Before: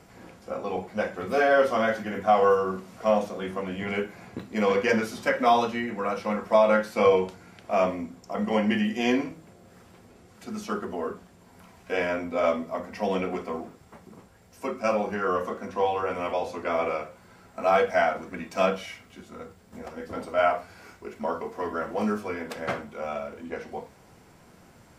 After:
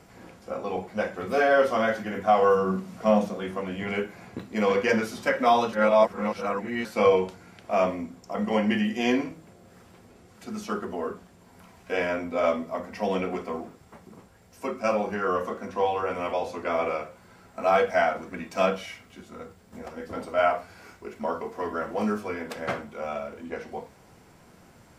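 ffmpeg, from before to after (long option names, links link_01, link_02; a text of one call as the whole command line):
ffmpeg -i in.wav -filter_complex "[0:a]asettb=1/sr,asplit=3[link_01][link_02][link_03];[link_01]atrim=end=2.544[link_04];[link_02]atrim=start=2.54:end=3.35,asetpts=PTS-STARTPTS,afade=type=in:duration=0.004:curve=qsin,afade=type=out:start_time=0.806:duration=0.004:curve=qsin,equalizer=frequency=180:width=1.5:gain=8.5[link_05];[link_03]atrim=start=3.346[link_06];[link_04][link_05]acrossfade=duration=0.004:curve1=hsin:curve2=qsin[link_07];[link_07][link_06]acrossfade=duration=0.004:curve1=qsin:curve2=hsin,asplit=3[link_08][link_09][link_10];[link_08]atrim=end=5.732[link_11];[link_09]atrim=start=5.728:end=6.852,asetpts=PTS-STARTPTS,areverse[link_12];[link_10]atrim=start=6.848[link_13];[link_11][link_12]acrossfade=duration=0.004:curve1=hsin:curve2=hsin[link_14];[link_14][link_13]acrossfade=duration=0.004:curve1=hsin:curve2=hsin" out.wav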